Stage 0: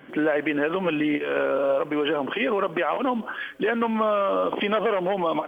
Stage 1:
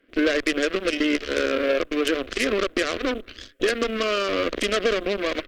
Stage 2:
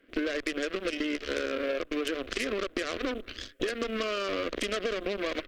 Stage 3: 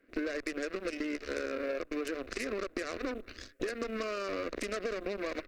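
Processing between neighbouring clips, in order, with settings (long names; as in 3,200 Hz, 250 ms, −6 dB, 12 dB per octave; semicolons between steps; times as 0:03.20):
harmonic generator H 3 −10 dB, 5 −11 dB, 7 −13 dB, 8 −25 dB, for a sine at −10.5 dBFS; phaser with its sweep stopped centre 360 Hz, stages 4; level +7 dB
downward compressor 6 to 1, threshold −28 dBFS, peak gain reduction 11 dB
parametric band 3,200 Hz −15 dB 0.28 octaves; level −4 dB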